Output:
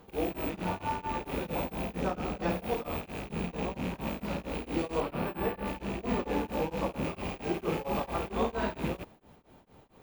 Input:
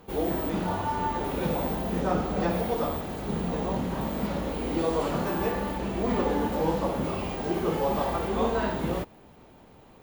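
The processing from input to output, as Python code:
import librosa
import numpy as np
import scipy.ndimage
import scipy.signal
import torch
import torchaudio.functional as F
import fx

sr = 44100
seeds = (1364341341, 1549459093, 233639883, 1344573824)

y = fx.rattle_buzz(x, sr, strikes_db=-40.0, level_db=-28.0)
y = fx.peak_eq(y, sr, hz=7100.0, db=-13.5, octaves=0.98, at=(5.0, 5.66))
y = y * np.abs(np.cos(np.pi * 4.4 * np.arange(len(y)) / sr))
y = y * 10.0 ** (-2.5 / 20.0)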